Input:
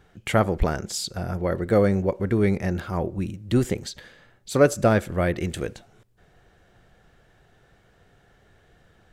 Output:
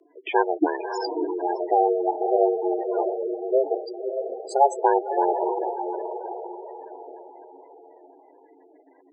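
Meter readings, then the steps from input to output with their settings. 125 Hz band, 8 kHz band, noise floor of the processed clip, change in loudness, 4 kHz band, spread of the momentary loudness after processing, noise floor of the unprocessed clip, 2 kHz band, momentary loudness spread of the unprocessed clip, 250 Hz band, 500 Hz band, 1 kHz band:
under -40 dB, -12.0 dB, -56 dBFS, -0.5 dB, n/a, 16 LU, -60 dBFS, -5.0 dB, 11 LU, -4.5 dB, +1.5 dB, +9.5 dB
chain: diffused feedback echo 0.6 s, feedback 45%, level -6 dB; spectral gate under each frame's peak -10 dB strong; frequency shift +270 Hz

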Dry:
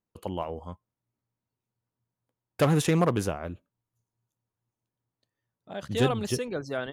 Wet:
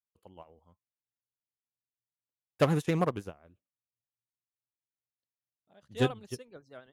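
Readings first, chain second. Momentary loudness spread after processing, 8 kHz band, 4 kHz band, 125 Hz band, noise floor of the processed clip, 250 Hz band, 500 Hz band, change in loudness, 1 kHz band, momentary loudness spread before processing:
18 LU, -12.0 dB, -6.5 dB, -5.5 dB, under -85 dBFS, -5.5 dB, -5.0 dB, -2.5 dB, -5.0 dB, 17 LU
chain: vibrato 9.7 Hz 52 cents; upward expander 2.5:1, over -34 dBFS

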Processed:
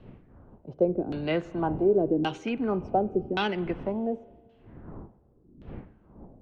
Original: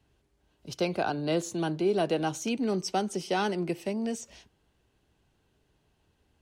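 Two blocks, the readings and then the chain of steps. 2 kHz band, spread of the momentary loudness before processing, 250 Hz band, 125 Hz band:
0.0 dB, 6 LU, +2.0 dB, +1.5 dB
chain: wind noise 230 Hz -46 dBFS; LFO low-pass saw down 0.89 Hz 260–3400 Hz; spring tank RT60 1.6 s, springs 33/46 ms, chirp 45 ms, DRR 19 dB

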